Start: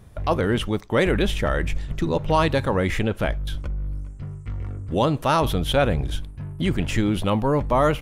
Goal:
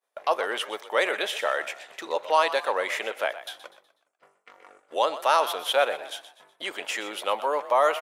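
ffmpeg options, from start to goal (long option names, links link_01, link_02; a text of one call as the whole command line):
ffmpeg -i in.wav -filter_complex "[0:a]highpass=frequency=530:width=0.5412,highpass=frequency=530:width=1.3066,agate=range=-33dB:threshold=-48dB:ratio=3:detection=peak,asplit=2[link_01][link_02];[link_02]asplit=4[link_03][link_04][link_05][link_06];[link_03]adelay=123,afreqshift=42,volume=-14dB[link_07];[link_04]adelay=246,afreqshift=84,volume=-22dB[link_08];[link_05]adelay=369,afreqshift=126,volume=-29.9dB[link_09];[link_06]adelay=492,afreqshift=168,volume=-37.9dB[link_10];[link_07][link_08][link_09][link_10]amix=inputs=4:normalize=0[link_11];[link_01][link_11]amix=inputs=2:normalize=0" out.wav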